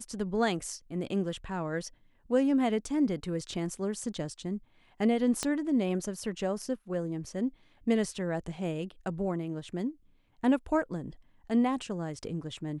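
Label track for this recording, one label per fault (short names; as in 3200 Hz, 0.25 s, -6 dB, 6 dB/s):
5.430000	5.430000	pop -16 dBFS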